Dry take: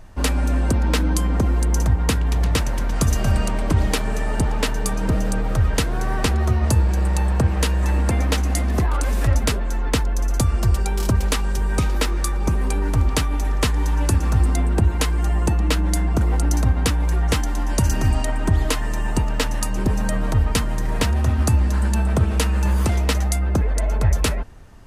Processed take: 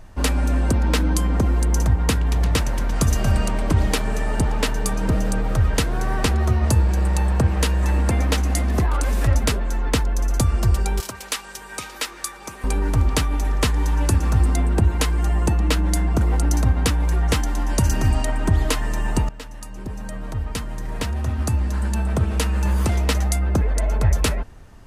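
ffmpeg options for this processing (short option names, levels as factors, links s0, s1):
-filter_complex "[0:a]asettb=1/sr,asplit=3[s0][s1][s2];[s0]atrim=end=11.004[s3];[s1]atrim=start=11:end=12.64,asetpts=PTS-STARTPTS,afade=t=in:d=0.004:c=qsin,afade=t=out:st=1.636:d=0.004:c=qsin,highpass=f=1500:p=1[s4];[s2]atrim=start=12.636[s5];[s3][s4]acrossfade=d=0.004:c1=hsin:c2=qsin[s6];[s6][s5]acrossfade=d=0.004:c1=qsin:c2=hsin,asplit=2[s7][s8];[s7]atrim=end=19.29,asetpts=PTS-STARTPTS,afade=t=out:st=19.286:d=0.004:c=hsin:silence=0.149624[s9];[s8]atrim=start=19.29,asetpts=PTS-STARTPTS,afade=t=in:d=3.96:silence=0.149624[s10];[s9][s10]concat=n=2:v=0:a=1"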